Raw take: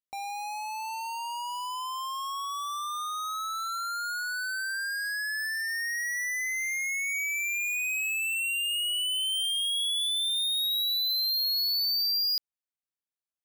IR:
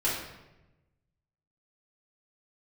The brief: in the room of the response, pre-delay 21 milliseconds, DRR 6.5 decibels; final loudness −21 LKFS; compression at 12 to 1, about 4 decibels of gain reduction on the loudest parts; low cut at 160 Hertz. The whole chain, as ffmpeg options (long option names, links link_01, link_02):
-filter_complex "[0:a]highpass=160,acompressor=threshold=-32dB:ratio=12,asplit=2[link_01][link_02];[1:a]atrim=start_sample=2205,adelay=21[link_03];[link_02][link_03]afir=irnorm=-1:irlink=0,volume=-16dB[link_04];[link_01][link_04]amix=inputs=2:normalize=0,volume=9.5dB"